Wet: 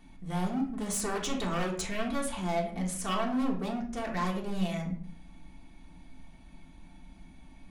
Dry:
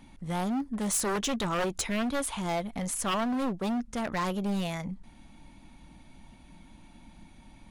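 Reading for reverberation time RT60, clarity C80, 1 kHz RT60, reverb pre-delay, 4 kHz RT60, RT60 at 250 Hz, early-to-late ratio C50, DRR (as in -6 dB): 0.55 s, 12.0 dB, 0.50 s, 3 ms, 0.35 s, 0.80 s, 7.0 dB, -1.0 dB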